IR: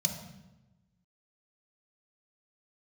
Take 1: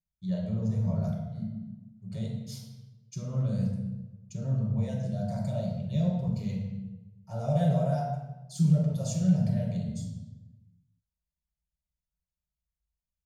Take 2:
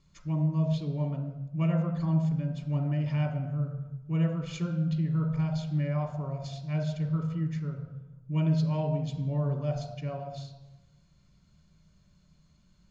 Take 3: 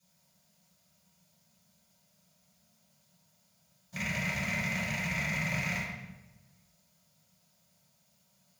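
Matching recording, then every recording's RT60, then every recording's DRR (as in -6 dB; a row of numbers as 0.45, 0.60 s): 2; 1.0, 1.0, 1.0 s; -7.0, 2.5, -14.0 dB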